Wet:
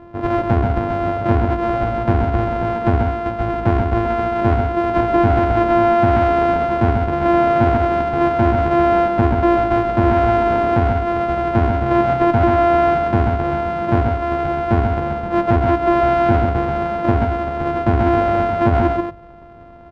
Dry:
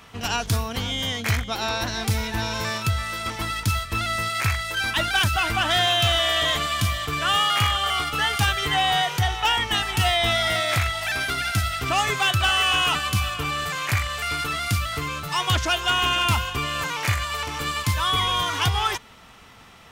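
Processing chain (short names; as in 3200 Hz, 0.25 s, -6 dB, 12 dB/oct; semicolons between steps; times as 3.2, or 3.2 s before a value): sample sorter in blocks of 128 samples; LPF 1000 Hz 12 dB/oct; notches 50/100/150/200 Hz; on a send: echo 0.132 s -5 dB; on the sum: maximiser +15 dB; Doppler distortion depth 0.22 ms; gain -5 dB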